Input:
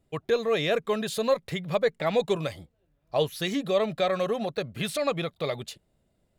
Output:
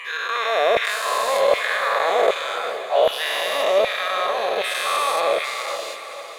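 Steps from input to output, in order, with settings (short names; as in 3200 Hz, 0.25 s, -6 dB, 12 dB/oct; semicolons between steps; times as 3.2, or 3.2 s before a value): spectral dilation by 0.48 s; LFO high-pass saw down 1.3 Hz 540–2100 Hz; diffused feedback echo 0.506 s, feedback 49%, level -10 dB; gain -3 dB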